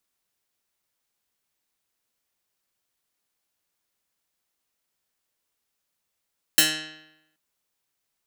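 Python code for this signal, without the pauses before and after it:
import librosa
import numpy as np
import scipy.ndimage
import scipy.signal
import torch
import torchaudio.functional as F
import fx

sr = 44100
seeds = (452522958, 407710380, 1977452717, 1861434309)

y = fx.pluck(sr, length_s=0.78, note=51, decay_s=0.89, pick=0.13, brightness='medium')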